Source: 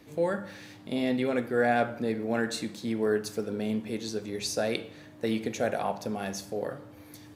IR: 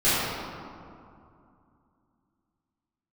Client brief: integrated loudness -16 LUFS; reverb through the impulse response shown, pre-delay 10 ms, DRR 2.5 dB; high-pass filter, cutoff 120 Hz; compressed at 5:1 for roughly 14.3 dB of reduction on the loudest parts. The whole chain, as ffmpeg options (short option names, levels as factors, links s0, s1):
-filter_complex "[0:a]highpass=120,acompressor=threshold=0.0126:ratio=5,asplit=2[s0][s1];[1:a]atrim=start_sample=2205,adelay=10[s2];[s1][s2]afir=irnorm=-1:irlink=0,volume=0.0944[s3];[s0][s3]amix=inputs=2:normalize=0,volume=14.1"